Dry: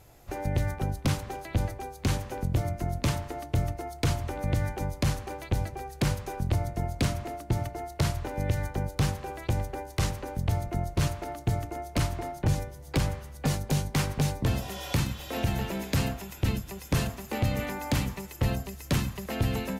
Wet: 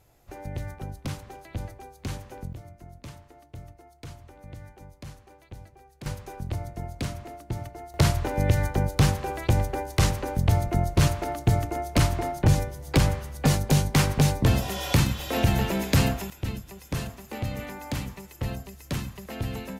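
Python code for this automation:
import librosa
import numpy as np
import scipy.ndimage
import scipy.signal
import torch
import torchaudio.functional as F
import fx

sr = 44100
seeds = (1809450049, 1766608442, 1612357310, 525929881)

y = fx.gain(x, sr, db=fx.steps((0.0, -6.5), (2.53, -15.5), (6.06, -4.5), (7.94, 6.0), (16.3, -4.0)))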